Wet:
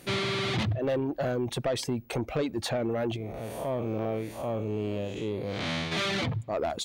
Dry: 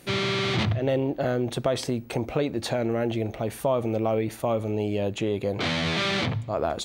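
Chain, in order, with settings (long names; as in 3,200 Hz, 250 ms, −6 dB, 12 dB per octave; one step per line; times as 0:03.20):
0:03.16–0:05.92: spectrum smeared in time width 191 ms
reverb reduction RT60 0.71 s
soft clipping −22 dBFS, distortion −15 dB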